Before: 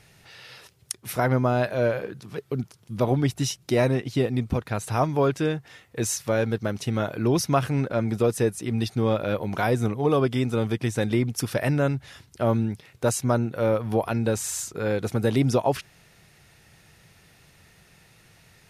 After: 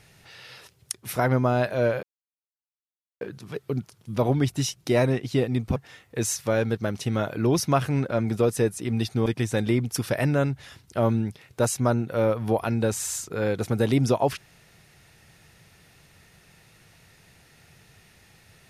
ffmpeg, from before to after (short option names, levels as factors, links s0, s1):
-filter_complex "[0:a]asplit=4[s0][s1][s2][s3];[s0]atrim=end=2.03,asetpts=PTS-STARTPTS,afade=t=out:st=2.026:d=0.004:c=hsin,apad=pad_dur=1.18[s4];[s1]atrim=start=2.03:end=4.582,asetpts=PTS-STARTPTS,afade=t=in:d=0.004:c=hsin[s5];[s2]atrim=start=5.568:end=9.072[s6];[s3]atrim=start=10.698[s7];[s4][s5]concat=n=2:v=0:a=1[s8];[s8][s6]acrossfade=d=0.004:c1=hsin:c2=hsin[s9];[s9][s7]acrossfade=d=0.004:c1=hsin:c2=hsin"